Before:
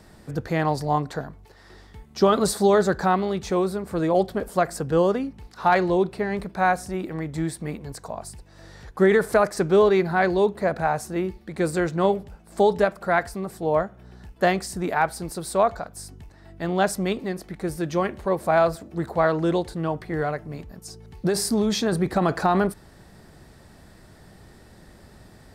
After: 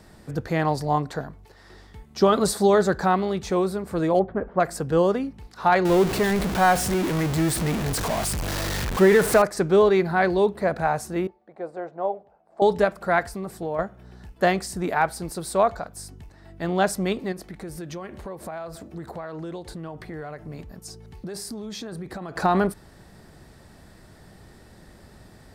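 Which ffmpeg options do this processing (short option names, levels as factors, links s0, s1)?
-filter_complex "[0:a]asettb=1/sr,asplit=3[s0][s1][s2];[s0]atrim=end=4.194[s3];[s1]atrim=start=4.19:end=4.6,asetpts=PTS-STARTPTS,afade=t=in:d=0.004:c=qsin,afade=t=out:st=0.406:d=0.004:c=qsin,lowpass=f=1900:w=0.5412,lowpass=f=1900:w=1.3066[s4];[s2]atrim=start=4.596[s5];[s3][s4]acrossfade=d=0.004:c1=hsin:c2=qsin[s6];[s6][s5]acrossfade=d=0.004:c1=qsin:c2=hsin,asettb=1/sr,asplit=3[s7][s8][s9];[s7]atrim=end=5.854[s10];[s8]atrim=start=5.85:end=9.42,asetpts=PTS-STARTPTS,afade=t=in:d=0.004:c=qsin,afade=t=out:st=3.566:d=0.004:c=qsin,aeval=exprs='val(0)+0.5*0.0794*sgn(val(0))':c=same[s11];[s9]atrim=start=9.416[s12];[s10][s11]acrossfade=d=0.004:c1=hsin:c2=qsin[s13];[s13][s12]acrossfade=d=0.004:c1=qsin:c2=hsin,asettb=1/sr,asplit=3[s14][s15][s16];[s14]atrim=end=10.114[s17];[s15]atrim=start=10.11:end=10.7,asetpts=PTS-STARTPTS,afade=t=in:d=0.004:c=qsin,afade=t=out:st=0.586:d=0.004:c=qsin,bandreject=f=6800:w=12[s18];[s16]atrim=start=10.696[s19];[s17][s18]acrossfade=d=0.004:c1=hsin:c2=qsin[s20];[s20][s19]acrossfade=d=0.004:c1=qsin:c2=hsin,asettb=1/sr,asplit=3[s21][s22][s23];[s21]atrim=end=11.274[s24];[s22]atrim=start=11.27:end=12.62,asetpts=PTS-STARTPTS,afade=t=in:d=0.004:c=qsin,afade=t=out:st=1.346:d=0.004:c=qsin,bandpass=f=690:t=q:w=2.9[s25];[s23]atrim=start=12.616[s26];[s24][s25]acrossfade=d=0.004:c1=hsin:c2=qsin[s27];[s27][s26]acrossfade=d=0.004:c1=qsin:c2=hsin,asettb=1/sr,asplit=3[s28][s29][s30];[s28]atrim=end=13.204[s31];[s29]atrim=start=13.2:end=13.79,asetpts=PTS-STARTPTS,afade=t=in:d=0.004:c=qsin,afade=t=out:st=0.586:d=0.004:c=qsin,acompressor=threshold=0.0501:ratio=3:attack=3.2:release=140:knee=1:detection=peak[s32];[s30]atrim=start=13.786[s33];[s31][s32]acrossfade=d=0.004:c1=hsin:c2=qsin[s34];[s34][s33]acrossfade=d=0.004:c1=qsin:c2=hsin,asettb=1/sr,asplit=3[s35][s36][s37];[s35]atrim=end=17.324[s38];[s36]atrim=start=17.32:end=22.36,asetpts=PTS-STARTPTS,afade=t=in:d=0.004:c=qsin,afade=t=out:st=5.036:d=0.004:c=qsin,acompressor=threshold=0.0251:ratio=6:attack=3.2:release=140:knee=1:detection=peak[s39];[s37]atrim=start=22.356[s40];[s38][s39]acrossfade=d=0.004:c1=hsin:c2=qsin[s41];[s41][s40]acrossfade=d=0.004:c1=qsin:c2=hsin"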